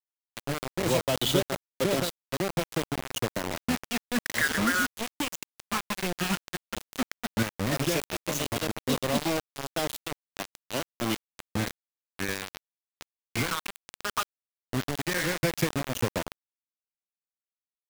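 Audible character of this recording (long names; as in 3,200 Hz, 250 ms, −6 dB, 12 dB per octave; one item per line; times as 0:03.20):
phaser sweep stages 8, 0.13 Hz, lowest notch 560–2,000 Hz
sample-and-hold tremolo 3.5 Hz, depth 70%
a quantiser's noise floor 6 bits, dither none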